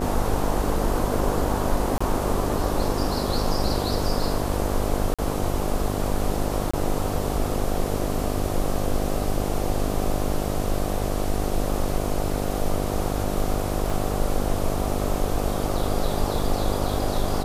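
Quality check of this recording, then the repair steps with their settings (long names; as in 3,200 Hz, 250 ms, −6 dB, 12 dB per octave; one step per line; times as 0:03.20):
mains buzz 50 Hz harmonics 15 −28 dBFS
0:01.98–0:02.00: drop-out 25 ms
0:05.14–0:05.19: drop-out 46 ms
0:06.71–0:06.74: drop-out 25 ms
0:13.90: drop-out 3.9 ms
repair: hum removal 50 Hz, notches 15
repair the gap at 0:01.98, 25 ms
repair the gap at 0:05.14, 46 ms
repair the gap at 0:06.71, 25 ms
repair the gap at 0:13.90, 3.9 ms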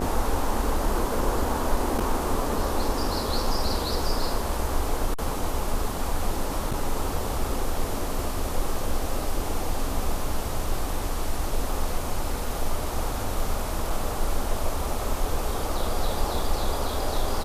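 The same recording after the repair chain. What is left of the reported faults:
none of them is left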